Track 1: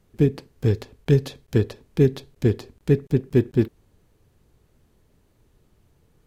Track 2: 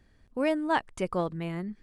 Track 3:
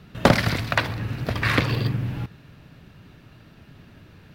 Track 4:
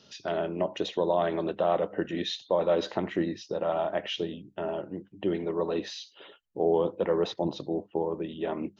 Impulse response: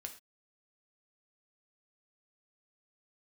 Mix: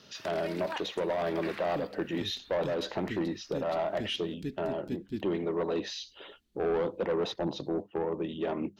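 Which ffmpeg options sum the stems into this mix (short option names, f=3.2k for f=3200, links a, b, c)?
-filter_complex "[0:a]equalizer=f=125:t=o:w=1:g=-11,equalizer=f=250:t=o:w=1:g=6,equalizer=f=500:t=o:w=1:g=-11,equalizer=f=1k:t=o:w=1:g=-9,equalizer=f=4k:t=o:w=1:g=8,adelay=1550,volume=-13.5dB[a];[1:a]highpass=530,volume=-10.5dB[b];[2:a]acompressor=threshold=-29dB:ratio=6,highpass=1k,volume=-7.5dB[c];[3:a]asoftclip=type=tanh:threshold=-24dB,volume=1.5dB[d];[a][b][c][d]amix=inputs=4:normalize=0,alimiter=limit=-24dB:level=0:latency=1:release=275"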